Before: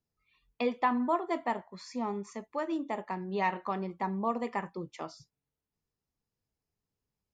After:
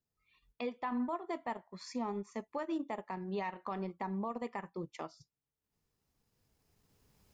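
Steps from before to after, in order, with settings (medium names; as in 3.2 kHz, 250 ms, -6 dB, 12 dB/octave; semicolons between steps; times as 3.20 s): recorder AGC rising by 10 dB/s; transient shaper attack -1 dB, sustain -8 dB; peak limiter -25 dBFS, peak gain reduction 7 dB; trim -3.5 dB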